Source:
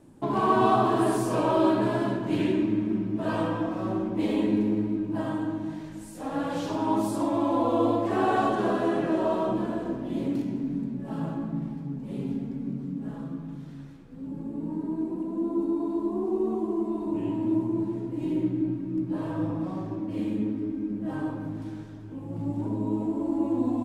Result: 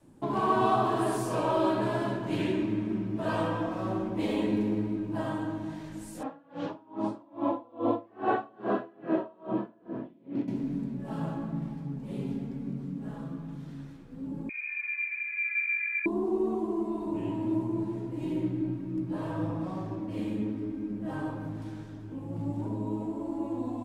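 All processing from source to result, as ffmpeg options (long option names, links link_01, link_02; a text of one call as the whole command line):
ffmpeg -i in.wav -filter_complex "[0:a]asettb=1/sr,asplit=3[link_01][link_02][link_03];[link_01]atrim=end=6.234[link_04];[link_02]atrim=start=6.23:end=10.48,asetpts=PTS-STARTPTS,afade=type=in:duration=0.004:curve=qsin,afade=type=out:start_time=4.246:duration=0.004:curve=qsin,highpass=130,lowpass=2500,aeval=exprs='val(0)*pow(10,-31*(0.5-0.5*cos(2*PI*2.4*n/s))/20)':channel_layout=same[link_05];[link_03]atrim=start=10.476[link_06];[link_04][link_05]acrossfade=duration=0.004:curve1=hsin:curve2=qsin[link_07];[link_07][link_06]acrossfade=duration=0.004:curve1=qsin:curve2=hsin,asettb=1/sr,asplit=3[link_08][link_09][link_10];[link_08]atrim=end=14.494[link_11];[link_09]atrim=start=14.49:end=16.06,asetpts=PTS-STARTPTS,afade=type=in:duration=0.004:curve=qsin,afade=type=out:start_time=1.566:duration=0.004:curve=qsin,highpass=frequency=340:poles=1,lowpass=frequency=2300:width_type=q:width=0.5098,lowpass=frequency=2300:width_type=q:width=0.6013,lowpass=frequency=2300:width_type=q:width=0.9,lowpass=frequency=2300:width_type=q:width=2.563,afreqshift=-2700[link_12];[link_10]atrim=start=16.056[link_13];[link_11][link_12]acrossfade=duration=0.004:curve1=hsin:curve2=qsin[link_14];[link_14][link_13]acrossfade=duration=0.004:curve1=qsin:curve2=hsin,adynamicequalizer=threshold=0.01:dfrequency=270:dqfactor=1.4:tfrequency=270:tqfactor=1.4:attack=5:release=100:ratio=0.375:range=2.5:mode=cutabove:tftype=bell,dynaudnorm=framelen=800:gausssize=5:maxgain=3dB,volume=-3dB" out.wav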